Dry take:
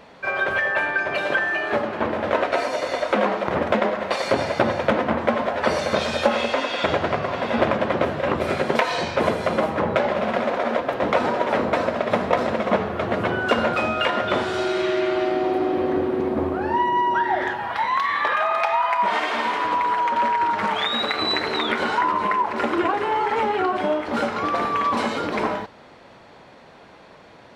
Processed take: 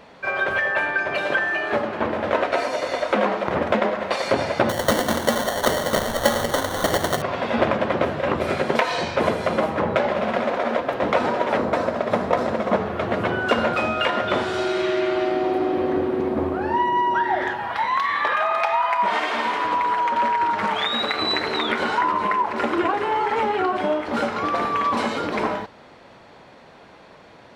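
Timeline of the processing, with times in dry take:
0:04.69–0:07.22: sample-rate reduction 2,500 Hz
0:11.57–0:12.86: parametric band 2,700 Hz −4.5 dB 1.2 octaves

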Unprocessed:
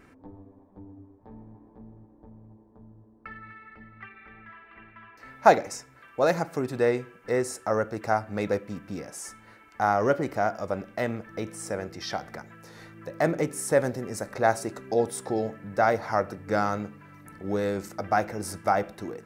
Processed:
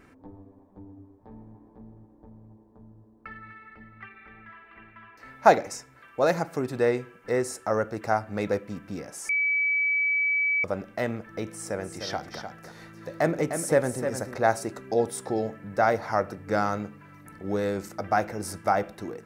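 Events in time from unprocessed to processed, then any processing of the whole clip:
0:09.29–0:10.64: beep over 2,290 Hz −21.5 dBFS
0:11.49–0:14.36: single-tap delay 303 ms −8 dB

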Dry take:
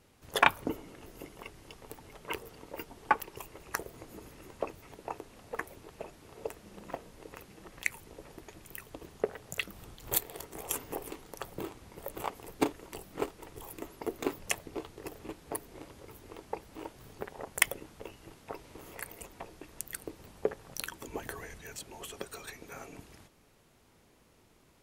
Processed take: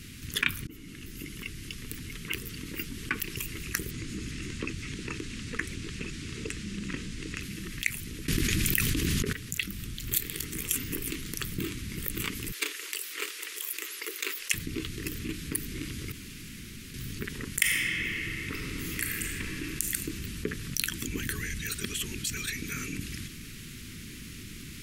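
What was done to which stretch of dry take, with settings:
0:00.67–0:01.38: fade in
0:03.91–0:07.43: low-pass filter 8,700 Hz 24 dB per octave
0:08.28–0:09.33: envelope flattener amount 100%
0:12.52–0:14.54: inverse Chebyshev high-pass filter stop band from 240 Hz
0:16.12–0:16.94: fill with room tone
0:17.48–0:19.91: thrown reverb, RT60 2.5 s, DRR 0 dB
0:21.69–0:22.37: reverse
whole clip: speech leveller within 4 dB 2 s; Chebyshev band-stop filter 240–2,100 Hz, order 2; envelope flattener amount 50%; level −1.5 dB

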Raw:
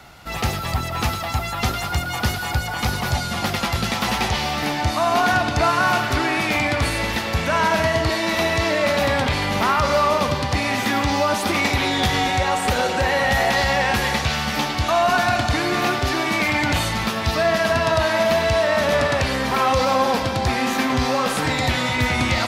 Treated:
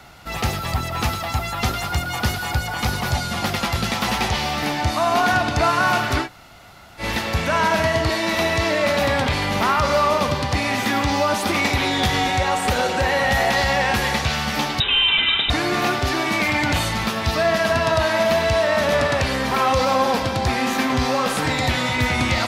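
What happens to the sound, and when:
0:06.24–0:07.02: fill with room tone, crossfade 0.10 s
0:14.80–0:15.50: voice inversion scrambler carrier 3,800 Hz

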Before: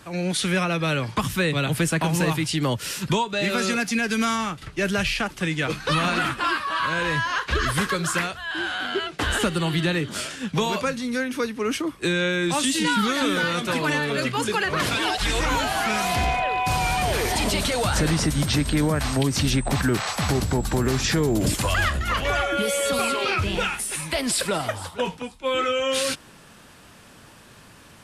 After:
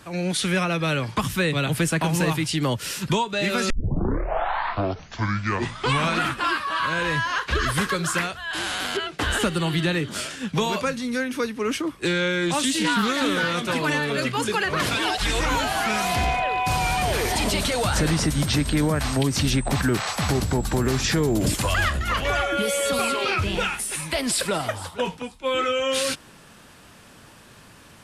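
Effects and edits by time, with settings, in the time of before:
0:03.70: tape start 2.55 s
0:08.53–0:08.97: every bin compressed towards the loudest bin 2 to 1
0:11.67–0:13.76: highs frequency-modulated by the lows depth 0.14 ms

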